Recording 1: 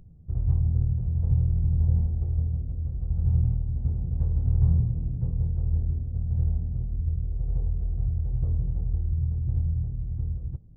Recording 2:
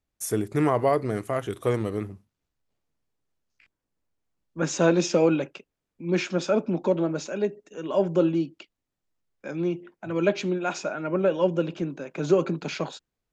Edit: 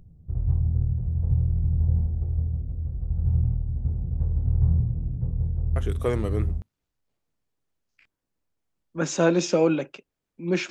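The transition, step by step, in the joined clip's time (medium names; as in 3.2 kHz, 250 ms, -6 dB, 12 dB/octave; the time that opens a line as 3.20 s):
recording 1
6.19 s: go over to recording 2 from 1.80 s, crossfade 0.86 s logarithmic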